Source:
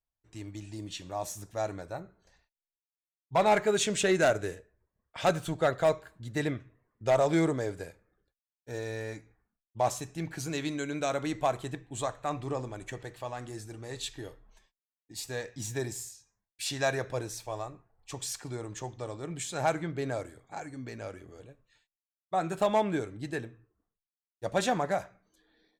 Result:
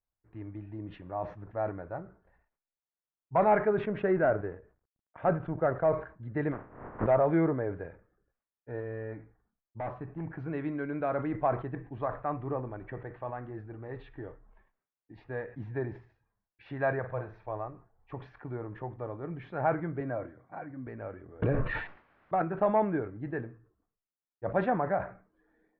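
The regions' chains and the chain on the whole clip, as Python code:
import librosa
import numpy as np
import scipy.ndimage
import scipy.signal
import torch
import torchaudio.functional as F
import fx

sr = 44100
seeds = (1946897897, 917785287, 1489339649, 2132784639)

y = fx.chain(x, sr, fx.law_mismatch(coded='A'),
    fx.high_shelf(hz=2500.0, db=-10.0), at=(3.69, 5.92))
y = fx.spec_flatten(y, sr, power=0.21, at=(6.51, 7.06), fade=0.02)
y = fx.lowpass(y, sr, hz=1100.0, slope=12, at=(6.51, 7.06), fade=0.02)
y = fx.pre_swell(y, sr, db_per_s=79.0, at=(6.51, 7.06), fade=0.02)
y = fx.chain(y, sr, fx.lowpass(hz=2300.0, slope=6),
    fx.clip_hard(threshold_db=-32.0), at=(8.8, 10.39))
y = fx.chain(y, sr, fx.peak_eq(hz=300.0, db=-9.5, octaves=0.93),
    fx.room_flutter(wall_m=8.3, rt60_s=0.31), at=(16.99, 17.46))
y = fx.chain(y, sr, fx.highpass(hz=97.0, slope=12),
    fx.notch_comb(f0_hz=430.0), at=(20.0, 20.87))
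y = fx.chain(y, sr, fx.high_shelf(hz=3900.0, db=9.5),
    fx.clip_hard(threshold_db=-23.5),
    fx.env_flatten(amount_pct=100), at=(21.42, 22.42))
y = scipy.signal.sosfilt(scipy.signal.cheby2(4, 70, 7300.0, 'lowpass', fs=sr, output='sos'), y)
y = fx.sustainer(y, sr, db_per_s=140.0)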